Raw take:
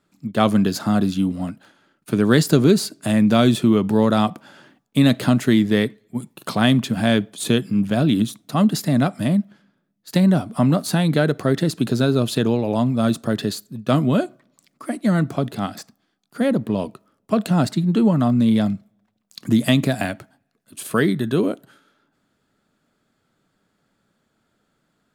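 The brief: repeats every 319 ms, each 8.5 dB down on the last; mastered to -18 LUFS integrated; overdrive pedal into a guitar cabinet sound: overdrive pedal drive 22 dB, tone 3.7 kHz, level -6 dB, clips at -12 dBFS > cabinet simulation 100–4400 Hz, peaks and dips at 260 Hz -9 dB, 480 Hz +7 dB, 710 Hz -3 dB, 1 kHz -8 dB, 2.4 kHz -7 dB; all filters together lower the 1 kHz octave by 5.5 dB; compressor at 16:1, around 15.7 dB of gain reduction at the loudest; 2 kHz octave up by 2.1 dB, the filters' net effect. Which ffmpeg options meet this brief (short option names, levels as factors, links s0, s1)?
-filter_complex "[0:a]equalizer=f=1000:t=o:g=-6,equalizer=f=2000:t=o:g=7.5,acompressor=threshold=0.0501:ratio=16,aecho=1:1:319|638|957|1276:0.376|0.143|0.0543|0.0206,asplit=2[s0][s1];[s1]highpass=f=720:p=1,volume=12.6,asoftclip=type=tanh:threshold=0.251[s2];[s0][s2]amix=inputs=2:normalize=0,lowpass=f=3700:p=1,volume=0.501,highpass=100,equalizer=f=260:t=q:w=4:g=-9,equalizer=f=480:t=q:w=4:g=7,equalizer=f=710:t=q:w=4:g=-3,equalizer=f=1000:t=q:w=4:g=-8,equalizer=f=2400:t=q:w=4:g=-7,lowpass=f=4400:w=0.5412,lowpass=f=4400:w=1.3066,volume=2.66"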